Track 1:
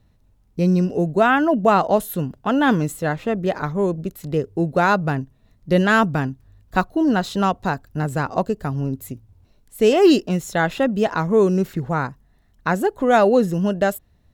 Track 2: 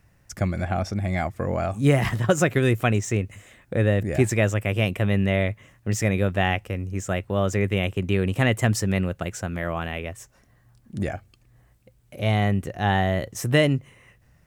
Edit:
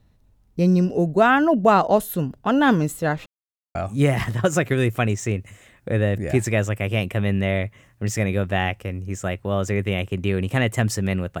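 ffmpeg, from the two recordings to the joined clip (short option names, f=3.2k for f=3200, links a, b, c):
-filter_complex "[0:a]apad=whole_dur=11.4,atrim=end=11.4,asplit=2[a][b];[a]atrim=end=3.26,asetpts=PTS-STARTPTS,afade=t=out:st=3.256:d=0.004:c=hsin[c];[b]atrim=start=3.26:end=3.75,asetpts=PTS-STARTPTS,volume=0[d];[1:a]atrim=start=1.6:end=9.25,asetpts=PTS-STARTPTS,afade=t=in:d=0.004:c=hsin[e];[c][d][e]concat=n=3:v=0:a=1"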